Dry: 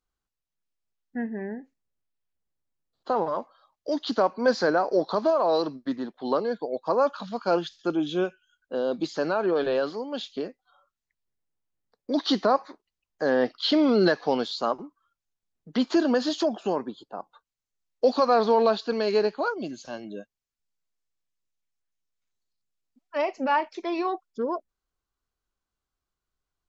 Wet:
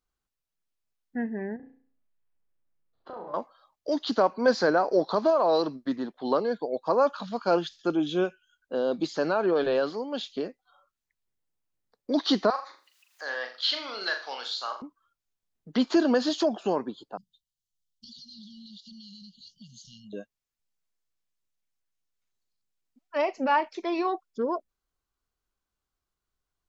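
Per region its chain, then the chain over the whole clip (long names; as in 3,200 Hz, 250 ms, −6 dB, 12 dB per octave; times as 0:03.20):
0:01.56–0:03.34: low-pass filter 2,400 Hz + downward compressor 3 to 1, threshold −44 dBFS + flutter between parallel walls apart 5.8 metres, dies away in 0.48 s
0:12.50–0:14.82: high-pass filter 1,400 Hz + upward compression, threshold −44 dBFS + flutter between parallel walls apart 7 metres, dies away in 0.37 s
0:17.17–0:20.13: linear-phase brick-wall band-stop 220–2,800 Hz + downward compressor 10 to 1, threshold −44 dBFS
whole clip: no processing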